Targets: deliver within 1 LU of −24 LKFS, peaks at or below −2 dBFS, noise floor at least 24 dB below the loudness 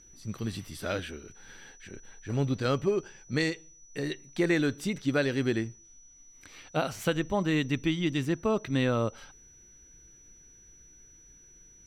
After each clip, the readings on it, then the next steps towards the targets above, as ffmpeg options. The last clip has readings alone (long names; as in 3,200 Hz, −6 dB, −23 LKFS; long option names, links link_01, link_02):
interfering tone 5,900 Hz; level of the tone −54 dBFS; integrated loudness −30.0 LKFS; sample peak −14.5 dBFS; target loudness −24.0 LKFS
→ -af "bandreject=frequency=5900:width=30"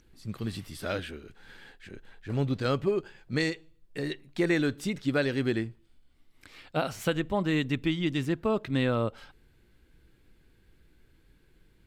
interfering tone none found; integrated loudness −30.0 LKFS; sample peak −14.5 dBFS; target loudness −24.0 LKFS
→ -af "volume=6dB"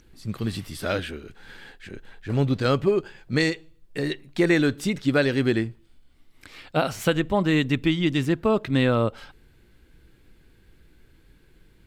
integrated loudness −24.0 LKFS; sample peak −8.5 dBFS; background noise floor −57 dBFS